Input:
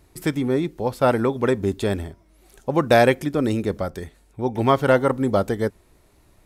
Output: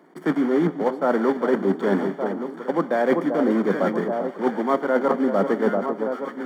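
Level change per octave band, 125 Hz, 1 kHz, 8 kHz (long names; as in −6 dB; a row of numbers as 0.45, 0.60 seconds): −8.0 dB, −1.5 dB, below −10 dB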